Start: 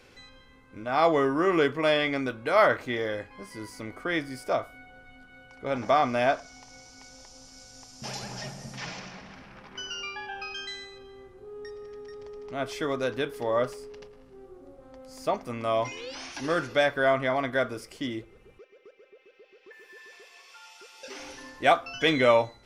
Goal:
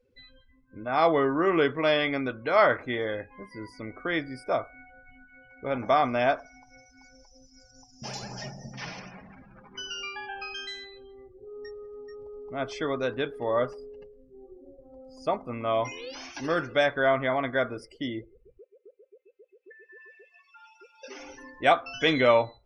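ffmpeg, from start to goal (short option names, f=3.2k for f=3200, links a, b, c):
-af "afftdn=nr=29:nf=-45"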